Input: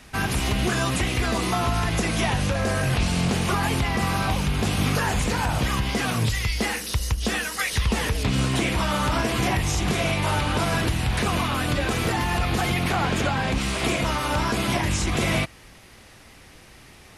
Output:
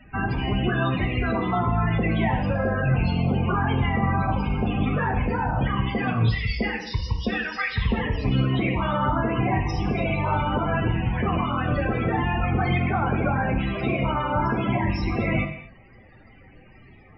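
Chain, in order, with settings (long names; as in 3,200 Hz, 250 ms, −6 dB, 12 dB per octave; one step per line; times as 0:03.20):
Butterworth low-pass 5,800 Hz 96 dB per octave
spectral peaks only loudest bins 32
reverb whose tail is shaped and stops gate 280 ms falling, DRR 5 dB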